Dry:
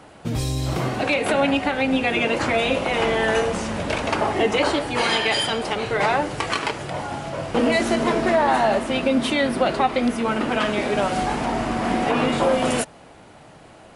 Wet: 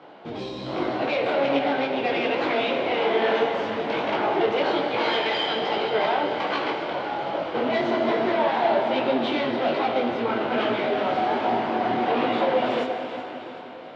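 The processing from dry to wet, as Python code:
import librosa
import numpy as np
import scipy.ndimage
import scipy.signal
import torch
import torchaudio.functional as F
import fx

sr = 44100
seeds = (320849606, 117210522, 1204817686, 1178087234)

p1 = fx.octave_divider(x, sr, octaves=1, level_db=-2.0)
p2 = fx.fold_sine(p1, sr, drive_db=11, ceiling_db=-6.5)
p3 = p1 + F.gain(torch.from_numpy(p2), -9.0).numpy()
p4 = fx.cabinet(p3, sr, low_hz=340.0, low_slope=12, high_hz=3600.0, hz=(350.0, 1200.0, 1800.0, 2600.0), db=(3, -4, -5, -5))
p5 = fx.echo_split(p4, sr, split_hz=1100.0, low_ms=164, high_ms=378, feedback_pct=52, wet_db=-14.0)
p6 = fx.rev_freeverb(p5, sr, rt60_s=4.5, hf_ratio=0.9, predelay_ms=5, drr_db=4.5)
p7 = fx.detune_double(p6, sr, cents=42)
y = F.gain(torch.from_numpy(p7), -4.5).numpy()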